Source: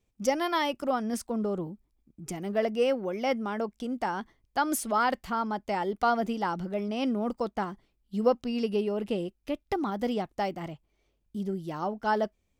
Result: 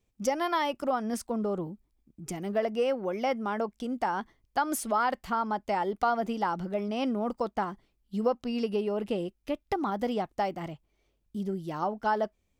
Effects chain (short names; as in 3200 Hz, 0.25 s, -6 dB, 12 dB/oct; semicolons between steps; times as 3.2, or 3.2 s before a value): dynamic EQ 930 Hz, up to +5 dB, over -36 dBFS, Q 0.72; compressor 2:1, threshold -27 dBFS, peak gain reduction 7 dB